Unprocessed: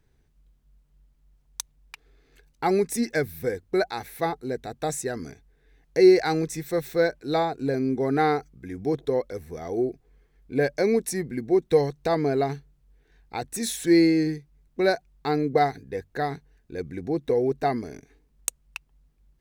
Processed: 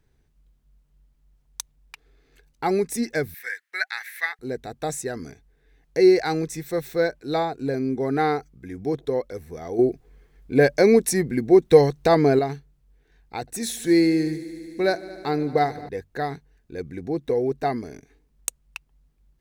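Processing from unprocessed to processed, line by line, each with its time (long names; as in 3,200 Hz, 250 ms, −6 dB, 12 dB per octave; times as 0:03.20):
0:03.34–0:04.39: high-pass with resonance 1,800 Hz, resonance Q 5.5
0:09.79–0:12.39: clip gain +6.5 dB
0:13.40–0:15.89: echo machine with several playback heads 74 ms, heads all three, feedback 74%, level −24 dB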